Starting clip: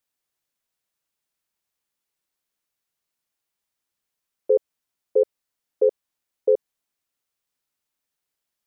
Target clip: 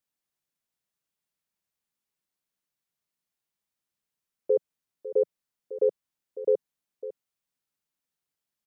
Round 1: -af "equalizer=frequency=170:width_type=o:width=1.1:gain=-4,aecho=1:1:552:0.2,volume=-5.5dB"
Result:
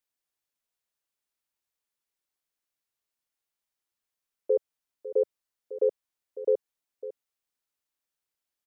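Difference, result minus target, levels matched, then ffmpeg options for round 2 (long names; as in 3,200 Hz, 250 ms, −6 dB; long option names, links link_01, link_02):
125 Hz band −7.0 dB
-af "equalizer=frequency=170:width_type=o:width=1.1:gain=6.5,aecho=1:1:552:0.2,volume=-5.5dB"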